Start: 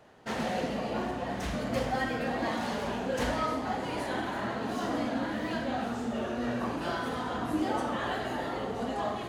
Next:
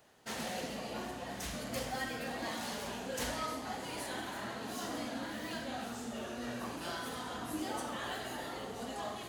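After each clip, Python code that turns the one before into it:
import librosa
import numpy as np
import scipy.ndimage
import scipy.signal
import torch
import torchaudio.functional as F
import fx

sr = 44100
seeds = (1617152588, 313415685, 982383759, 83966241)

y = F.preemphasis(torch.from_numpy(x), 0.8).numpy()
y = y * librosa.db_to_amplitude(4.5)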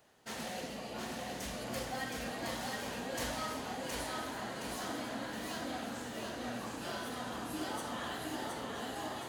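y = fx.echo_feedback(x, sr, ms=718, feedback_pct=47, wet_db=-3)
y = y * librosa.db_to_amplitude(-2.0)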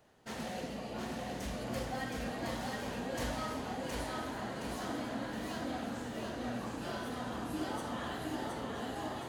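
y = fx.tilt_eq(x, sr, slope=-1.5)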